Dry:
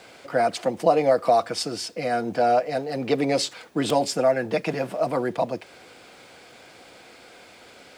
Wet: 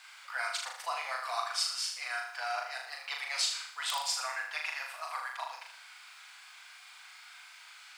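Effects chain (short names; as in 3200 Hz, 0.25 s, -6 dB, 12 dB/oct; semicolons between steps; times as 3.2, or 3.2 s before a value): octaver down 1 oct, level +4 dB; steep high-pass 1000 Hz 36 dB/oct; flutter echo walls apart 6.7 m, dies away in 0.63 s; gain -4 dB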